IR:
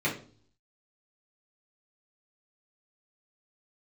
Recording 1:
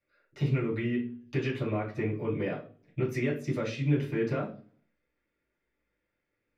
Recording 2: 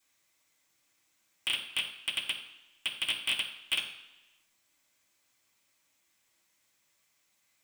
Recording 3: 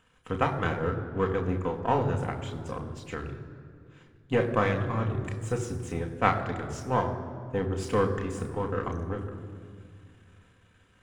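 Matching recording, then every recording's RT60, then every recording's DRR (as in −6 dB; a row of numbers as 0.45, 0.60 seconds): 1; 0.45, 1.0, 2.2 seconds; −7.0, −6.0, 2.0 decibels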